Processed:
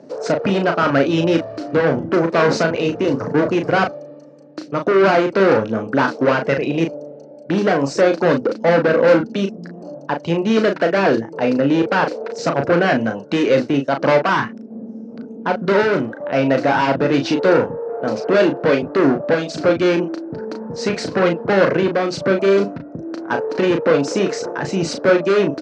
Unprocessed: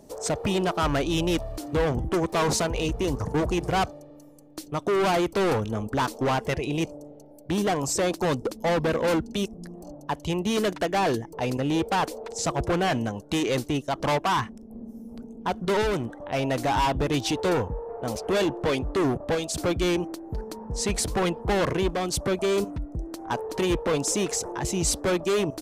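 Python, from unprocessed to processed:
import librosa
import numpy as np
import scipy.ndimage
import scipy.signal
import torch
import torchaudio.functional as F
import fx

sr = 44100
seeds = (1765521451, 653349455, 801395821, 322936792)

y = fx.cabinet(x, sr, low_hz=140.0, low_slope=24, high_hz=4800.0, hz=(270.0, 540.0, 990.0, 1500.0, 3400.0), db=(4, 6, -3, 7, -8))
y = fx.notch(y, sr, hz=780.0, q=20.0)
y = fx.doubler(y, sr, ms=36.0, db=-6)
y = y * librosa.db_to_amplitude(6.5)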